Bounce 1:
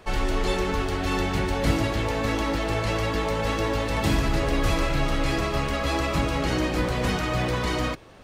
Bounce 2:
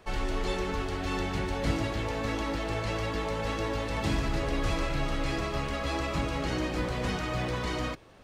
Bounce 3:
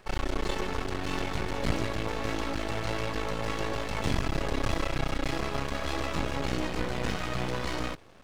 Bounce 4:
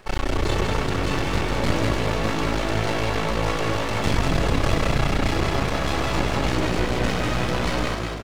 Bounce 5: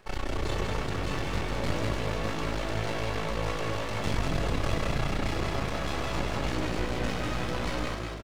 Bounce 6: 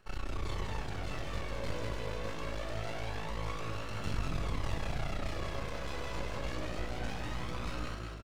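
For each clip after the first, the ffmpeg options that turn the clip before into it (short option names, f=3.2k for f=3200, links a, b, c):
-filter_complex "[0:a]acrossover=split=9400[a][b];[b]acompressor=threshold=-57dB:ratio=4:attack=1:release=60[c];[a][c]amix=inputs=2:normalize=0,volume=-6dB"
-af "aeval=exprs='max(val(0),0)':c=same,volume=3.5dB"
-filter_complex "[0:a]asplit=8[a][b][c][d][e][f][g][h];[b]adelay=195,afreqshift=53,volume=-4dB[i];[c]adelay=390,afreqshift=106,volume=-9.4dB[j];[d]adelay=585,afreqshift=159,volume=-14.7dB[k];[e]adelay=780,afreqshift=212,volume=-20.1dB[l];[f]adelay=975,afreqshift=265,volume=-25.4dB[m];[g]adelay=1170,afreqshift=318,volume=-30.8dB[n];[h]adelay=1365,afreqshift=371,volume=-36.1dB[o];[a][i][j][k][l][m][n][o]amix=inputs=8:normalize=0,volume=6dB"
-filter_complex "[0:a]asplit=2[a][b];[b]adelay=20,volume=-13dB[c];[a][c]amix=inputs=2:normalize=0,volume=-8dB"
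-af "flanger=delay=0.7:depth=1.3:regen=51:speed=0.25:shape=sinusoidal,volume=-4dB"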